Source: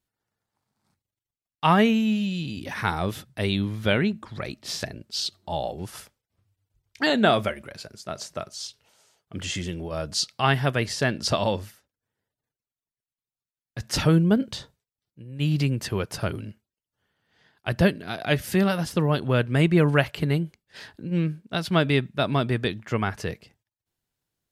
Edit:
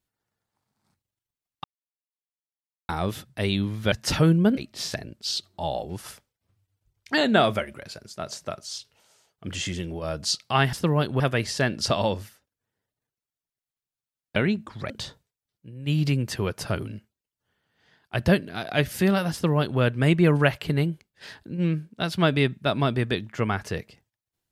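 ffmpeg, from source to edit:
-filter_complex "[0:a]asplit=9[a][b][c][d][e][f][g][h][i];[a]atrim=end=1.64,asetpts=PTS-STARTPTS,afade=t=out:st=1.636:d=0.004:c=hsin[j];[b]atrim=start=1.64:end=2.89,asetpts=PTS-STARTPTS,volume=0[k];[c]atrim=start=2.89:end=3.922,asetpts=PTS-STARTPTS,afade=t=in:d=0.004:c=hsin[l];[d]atrim=start=13.778:end=14.432[m];[e]atrim=start=4.458:end=10.622[n];[f]atrim=start=18.858:end=19.332[o];[g]atrim=start=10.618:end=13.782[p];[h]atrim=start=3.918:end=4.462[q];[i]atrim=start=14.428[r];[j][k][l]concat=n=3:v=0:a=1[s];[s][m]acrossfade=d=0.004:c1=hsin:c2=hsin[t];[t][n]acrossfade=d=0.004:c1=hsin:c2=hsin[u];[u][o]acrossfade=d=0.004:c1=hsin:c2=hsin[v];[v][p]acrossfade=d=0.004:c1=hsin:c2=hsin[w];[w][q]acrossfade=d=0.004:c1=hsin:c2=hsin[x];[x][r]acrossfade=d=0.004:c1=hsin:c2=hsin"

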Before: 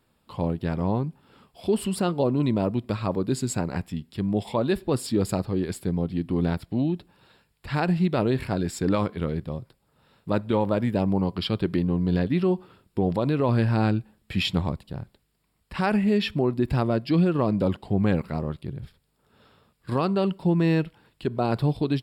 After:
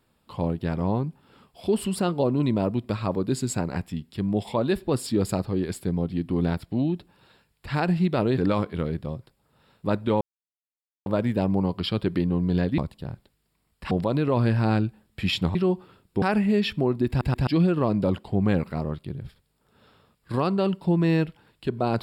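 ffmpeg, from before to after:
-filter_complex "[0:a]asplit=10[a][b][c][d][e][f][g][h][i][j];[a]atrim=end=8.382[k];[b]atrim=start=8.808:end=10.64,asetpts=PTS-STARTPTS,afade=t=out:st=1.828:d=0.004:c=hsin,apad=pad_dur=0.85[l];[c]atrim=start=10.64:end=12.362,asetpts=PTS-STARTPTS,afade=t=in:d=0.004:c=hsin[m];[d]atrim=start=14.668:end=15.802[n];[e]atrim=start=13.028:end=14.672[o];[f]atrim=start=12.358:end=13.032[p];[g]atrim=start=15.798:end=16.792[q];[h]atrim=start=16.658:end=16.792[r];[i]atrim=start=16.658:end=16.792[s];[j]atrim=start=17.048[t];[l][m]concat=n=2:v=0:a=1[u];[k][u]acrossfade=d=0.004:c1=hsin:c2=hsin[v];[v][n]acrossfade=d=0.004:c1=hsin:c2=hsin[w];[w][o]acrossfade=d=0.004:c1=hsin:c2=hsin[x];[x][p]acrossfade=d=0.004:c1=hsin:c2=hsin[y];[y][q]acrossfade=d=0.004:c1=hsin:c2=hsin[z];[z][r]acrossfade=d=0.004:c1=hsin:c2=hsin[aa];[aa][s]acrossfade=d=0.004:c1=hsin:c2=hsin[ab];[ab][t]acrossfade=d=0.004:c1=hsin:c2=hsin"

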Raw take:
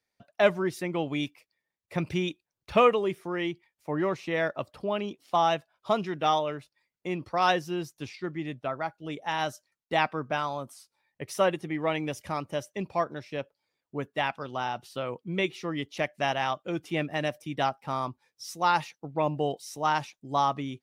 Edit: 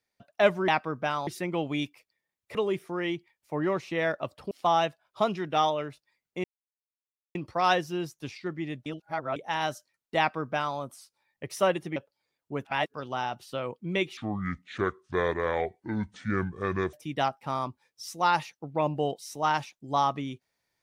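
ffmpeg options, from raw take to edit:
-filter_complex "[0:a]asplit=13[a][b][c][d][e][f][g][h][i][j][k][l][m];[a]atrim=end=0.682[n];[b]atrim=start=9.958:end=10.552[o];[c]atrim=start=0.678:end=1.962[p];[d]atrim=start=2.908:end=4.872[q];[e]atrim=start=5.198:end=7.13,asetpts=PTS-STARTPTS,afade=t=out:st=1.928:d=0.004:c=hsin,apad=pad_dur=0.91[r];[f]atrim=start=7.13:end=8.642,asetpts=PTS-STARTPTS,afade=t=in:d=0.004:c=hsin[s];[g]atrim=start=8.638:end=9.142,asetpts=PTS-STARTPTS,areverse[t];[h]atrim=start=9.138:end=11.742[u];[i]atrim=start=13.388:end=14.082[v];[j]atrim=start=14.078:end=14.372,asetpts=PTS-STARTPTS,areverse[w];[k]atrim=start=14.368:end=15.604[x];[l]atrim=start=15.6:end=17.34,asetpts=PTS-STARTPTS,asetrate=27783,aresample=44100[y];[m]atrim=start=17.336[z];[n][o]acrossfade=d=0.004:c1=hsin:c2=hsin[aa];[aa][p]acrossfade=d=0.004:c1=hsin:c2=hsin[ab];[ab][q]acrossfade=d=0.004:c1=hsin:c2=hsin[ac];[r][s]concat=n=2:v=0:a=1[ad];[ac][ad]acrossfade=d=0.004:c1=hsin:c2=hsin[ae];[ae][t]acrossfade=d=0.004:c1=hsin:c2=hsin[af];[af][u]acrossfade=d=0.004:c1=hsin:c2=hsin[ag];[ag][v]acrossfade=d=0.004:c1=hsin:c2=hsin[ah];[ah][w]acrossfade=d=0.004:c1=hsin:c2=hsin[ai];[ai][x]acrossfade=d=0.004:c1=hsin:c2=hsin[aj];[aj][y]acrossfade=d=0.004:c1=hsin:c2=hsin[ak];[ak][z]acrossfade=d=0.004:c1=hsin:c2=hsin"

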